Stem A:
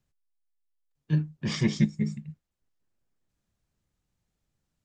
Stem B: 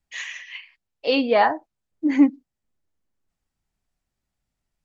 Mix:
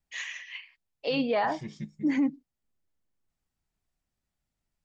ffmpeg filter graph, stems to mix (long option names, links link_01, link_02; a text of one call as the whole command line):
ffmpeg -i stem1.wav -i stem2.wav -filter_complex "[0:a]volume=-15.5dB[link_01];[1:a]volume=-4dB[link_02];[link_01][link_02]amix=inputs=2:normalize=0,alimiter=limit=-19dB:level=0:latency=1:release=14" out.wav